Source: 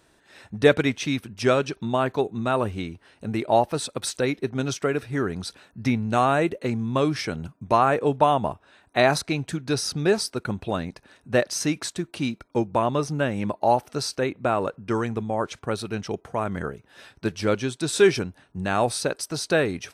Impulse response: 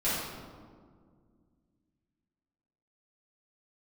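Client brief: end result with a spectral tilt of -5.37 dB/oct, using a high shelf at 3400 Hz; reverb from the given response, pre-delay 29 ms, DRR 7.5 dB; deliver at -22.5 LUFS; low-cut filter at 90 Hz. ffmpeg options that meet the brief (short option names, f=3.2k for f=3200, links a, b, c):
-filter_complex "[0:a]highpass=90,highshelf=f=3.4k:g=-8,asplit=2[a][b];[1:a]atrim=start_sample=2205,adelay=29[c];[b][c]afir=irnorm=-1:irlink=0,volume=-17.5dB[d];[a][d]amix=inputs=2:normalize=0,volume=2dB"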